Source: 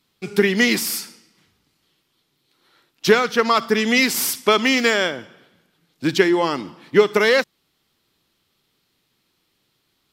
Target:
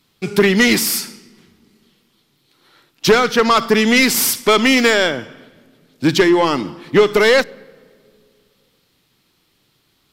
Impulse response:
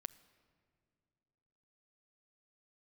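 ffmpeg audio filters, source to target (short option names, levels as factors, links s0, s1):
-filter_complex "[0:a]asoftclip=type=tanh:threshold=0.237,asplit=2[s0][s1];[1:a]atrim=start_sample=2205,lowshelf=f=240:g=7.5[s2];[s1][s2]afir=irnorm=-1:irlink=0,volume=0.891[s3];[s0][s3]amix=inputs=2:normalize=0,volume=1.33"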